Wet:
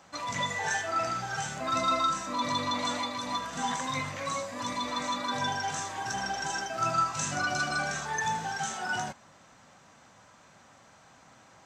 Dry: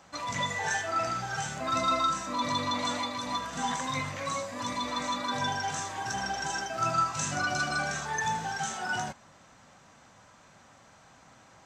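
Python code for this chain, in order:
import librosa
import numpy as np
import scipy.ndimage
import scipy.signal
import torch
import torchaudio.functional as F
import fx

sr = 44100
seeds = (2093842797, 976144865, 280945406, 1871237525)

y = fx.low_shelf(x, sr, hz=70.0, db=-6.5)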